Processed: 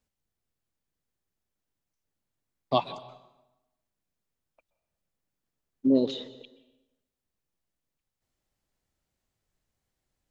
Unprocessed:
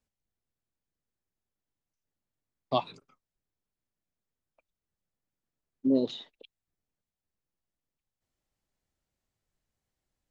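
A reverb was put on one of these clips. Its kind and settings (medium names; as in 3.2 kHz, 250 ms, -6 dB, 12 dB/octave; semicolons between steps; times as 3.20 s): plate-style reverb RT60 1 s, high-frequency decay 0.8×, pre-delay 115 ms, DRR 15 dB; trim +3 dB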